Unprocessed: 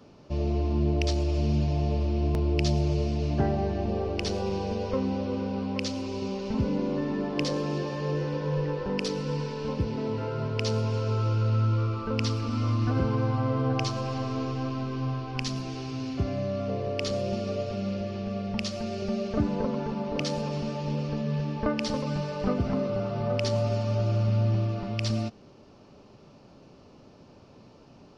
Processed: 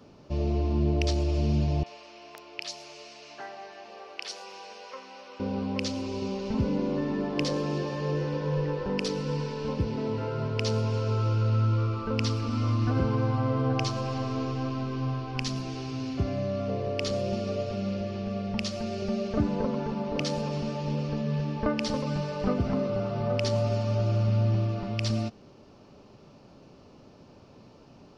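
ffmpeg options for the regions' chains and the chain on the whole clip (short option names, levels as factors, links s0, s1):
-filter_complex "[0:a]asettb=1/sr,asplit=3[s0][s1][s2];[s0]atrim=end=1.834[s3];[s1]atrim=start=1.83:end=5.4,asetpts=PTS-STARTPTS,afade=t=in:d=0.004:c=qsin,afade=t=out:st=3.566:d=0.004:c=qsin,highpass=1200,acrossover=split=3800[s4][s5];[s5]adelay=30[s6];[s4][s6]amix=inputs=2:normalize=0,atrim=end_sample=157437[s7];[s2]atrim=start=5.396[s8];[s3][s7]acrossfade=d=0.004:c1=hsin:c2=qsin[s9];[s9][s8]acrossfade=d=0.004:c1=qsin:c2=hsin"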